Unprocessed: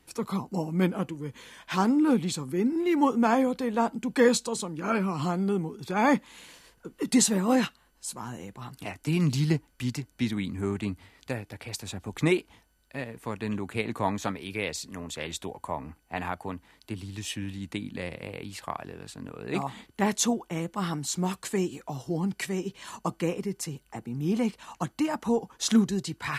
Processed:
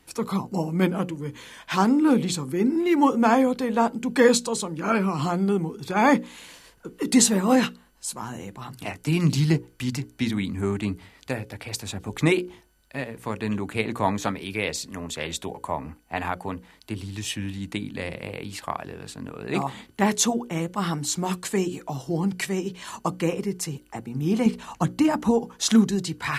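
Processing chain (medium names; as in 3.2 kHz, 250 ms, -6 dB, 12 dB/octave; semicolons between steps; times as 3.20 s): hum notches 60/120/180/240/300/360/420/480/540 Hz; 24.46–25.31 s: bass shelf 390 Hz +6.5 dB; trim +4.5 dB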